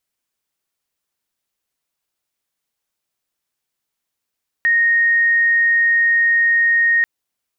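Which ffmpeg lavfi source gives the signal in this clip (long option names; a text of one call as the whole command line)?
ffmpeg -f lavfi -i "aevalsrc='0.266*sin(2*PI*1860*t)':duration=2.39:sample_rate=44100" out.wav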